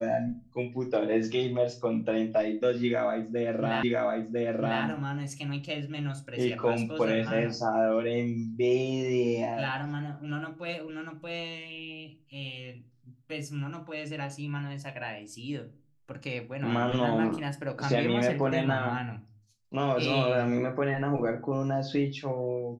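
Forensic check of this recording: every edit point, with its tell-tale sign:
3.83 s: repeat of the last 1 s

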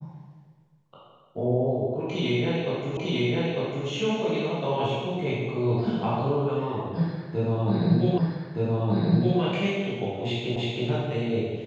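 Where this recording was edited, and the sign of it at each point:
2.97 s: repeat of the last 0.9 s
8.18 s: repeat of the last 1.22 s
10.56 s: repeat of the last 0.32 s

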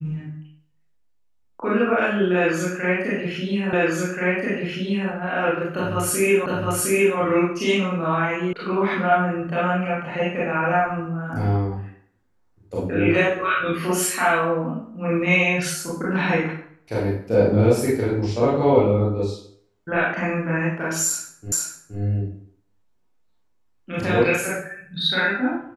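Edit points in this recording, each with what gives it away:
3.73 s: repeat of the last 1.38 s
6.46 s: repeat of the last 0.71 s
8.53 s: sound stops dead
21.52 s: repeat of the last 0.47 s

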